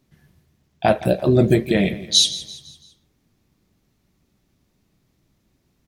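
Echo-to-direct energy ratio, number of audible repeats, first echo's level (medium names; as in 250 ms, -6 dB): -15.5 dB, 3, -16.5 dB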